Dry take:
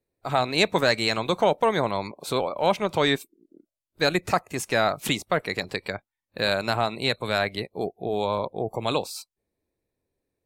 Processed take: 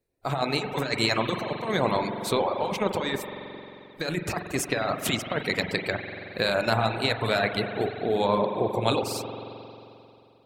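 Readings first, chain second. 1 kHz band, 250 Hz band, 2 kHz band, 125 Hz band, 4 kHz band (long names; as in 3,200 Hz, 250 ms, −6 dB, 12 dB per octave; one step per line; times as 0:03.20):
−2.0 dB, 0.0 dB, −1.5 dB, +1.0 dB, −2.5 dB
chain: compressor whose output falls as the input rises −24 dBFS, ratio −0.5
spring reverb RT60 2.8 s, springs 44 ms, chirp 70 ms, DRR 1.5 dB
reverb reduction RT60 0.67 s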